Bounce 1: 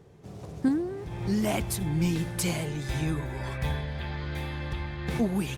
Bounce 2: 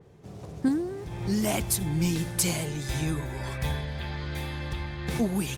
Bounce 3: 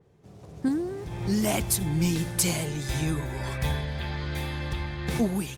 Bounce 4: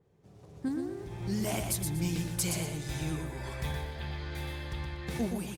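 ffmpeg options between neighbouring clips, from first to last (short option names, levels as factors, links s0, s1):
-af "adynamicequalizer=threshold=0.00316:dfrequency=4000:dqfactor=0.7:tfrequency=4000:tqfactor=0.7:attack=5:release=100:ratio=0.375:range=3.5:mode=boostabove:tftype=highshelf"
-af "dynaudnorm=f=440:g=3:m=2.82,volume=0.447"
-af "aecho=1:1:120|240|360:0.531|0.138|0.0359,volume=0.422"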